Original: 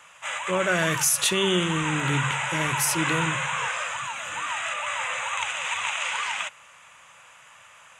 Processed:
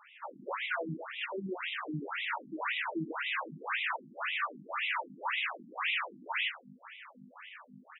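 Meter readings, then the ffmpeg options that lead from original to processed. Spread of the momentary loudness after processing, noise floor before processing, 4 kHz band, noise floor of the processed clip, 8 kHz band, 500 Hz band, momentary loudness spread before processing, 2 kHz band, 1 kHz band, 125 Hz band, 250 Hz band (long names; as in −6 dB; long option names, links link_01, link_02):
17 LU, −51 dBFS, −10.5 dB, −58 dBFS, below −40 dB, −12.5 dB, 9 LU, −8.0 dB, −9.0 dB, −18.0 dB, −12.0 dB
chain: -filter_complex "[0:a]dynaudnorm=framelen=100:gausssize=5:maxgain=8dB,acrusher=bits=2:mode=log:mix=0:aa=0.000001,asplit=2[link_01][link_02];[link_02]aecho=0:1:200:0.178[link_03];[link_01][link_03]amix=inputs=2:normalize=0,asoftclip=type=tanh:threshold=-11.5dB,acompressor=threshold=-20dB:ratio=3,aresample=8000,aresample=44100,asplit=2[link_04][link_05];[link_05]adelay=12,volume=-5dB[link_06];[link_04][link_06]amix=inputs=2:normalize=0,aeval=exprs='val(0)+0.0158*(sin(2*PI*50*n/s)+sin(2*PI*2*50*n/s)/2+sin(2*PI*3*50*n/s)/3+sin(2*PI*4*50*n/s)/4+sin(2*PI*5*50*n/s)/5)':channel_layout=same,asoftclip=type=hard:threshold=-22dB,afftfilt=real='re*between(b*sr/1024,230*pow(2800/230,0.5+0.5*sin(2*PI*1.9*pts/sr))/1.41,230*pow(2800/230,0.5+0.5*sin(2*PI*1.9*pts/sr))*1.41)':imag='im*between(b*sr/1024,230*pow(2800/230,0.5+0.5*sin(2*PI*1.9*pts/sr))/1.41,230*pow(2800/230,0.5+0.5*sin(2*PI*1.9*pts/sr))*1.41)':win_size=1024:overlap=0.75,volume=-4dB"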